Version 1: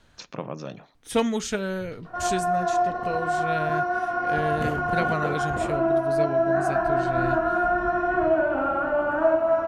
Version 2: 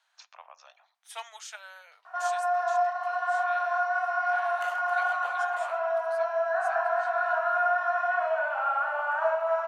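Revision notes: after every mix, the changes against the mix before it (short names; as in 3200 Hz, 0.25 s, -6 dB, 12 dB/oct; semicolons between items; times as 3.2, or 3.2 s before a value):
speech -9.5 dB; master: add steep high-pass 700 Hz 48 dB/oct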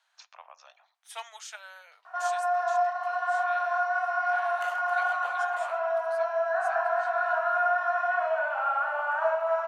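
none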